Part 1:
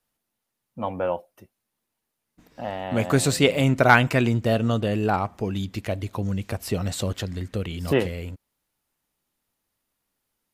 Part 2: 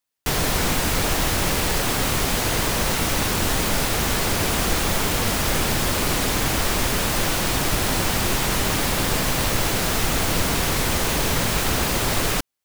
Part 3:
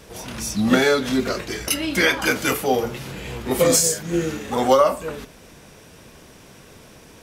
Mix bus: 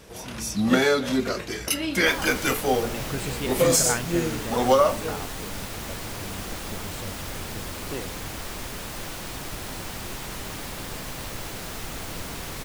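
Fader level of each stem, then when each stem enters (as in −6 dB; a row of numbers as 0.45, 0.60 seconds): −13.5, −13.0, −3.0 decibels; 0.00, 1.80, 0.00 seconds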